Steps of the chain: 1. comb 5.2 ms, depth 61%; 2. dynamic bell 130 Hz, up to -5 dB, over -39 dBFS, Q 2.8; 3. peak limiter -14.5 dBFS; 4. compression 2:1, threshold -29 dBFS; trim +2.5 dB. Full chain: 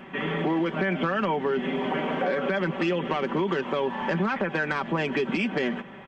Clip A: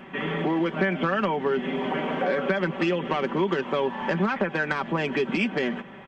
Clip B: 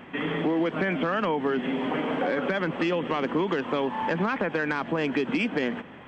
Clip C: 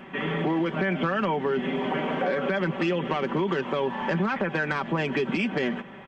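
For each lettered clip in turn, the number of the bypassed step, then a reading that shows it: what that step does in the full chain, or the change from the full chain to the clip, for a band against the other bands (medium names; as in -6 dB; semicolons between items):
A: 3, crest factor change +2.0 dB; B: 1, 125 Hz band -2.0 dB; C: 2, 125 Hz band +1.5 dB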